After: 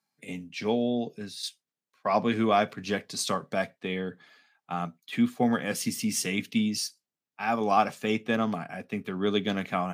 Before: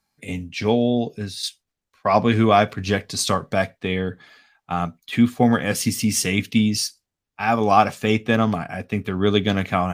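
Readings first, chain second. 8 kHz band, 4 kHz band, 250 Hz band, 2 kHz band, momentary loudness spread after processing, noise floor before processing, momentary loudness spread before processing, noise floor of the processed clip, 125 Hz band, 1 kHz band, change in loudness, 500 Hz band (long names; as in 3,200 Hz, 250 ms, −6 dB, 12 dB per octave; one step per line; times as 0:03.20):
−7.5 dB, −7.5 dB, −7.5 dB, −7.5 dB, 11 LU, −83 dBFS, 11 LU, below −85 dBFS, −12.5 dB, −7.5 dB, −8.0 dB, −7.5 dB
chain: high-pass filter 140 Hz 24 dB per octave
level −7.5 dB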